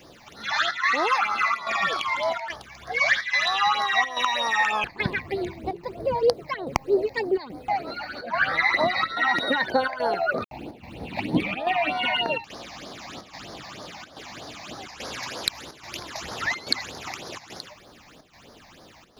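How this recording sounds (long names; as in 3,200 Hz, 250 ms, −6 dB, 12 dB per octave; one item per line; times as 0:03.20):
a quantiser's noise floor 10 bits, dither none
chopped level 1.2 Hz, depth 65%, duty 85%
phaser sweep stages 8, 3.2 Hz, lowest notch 390–2,700 Hz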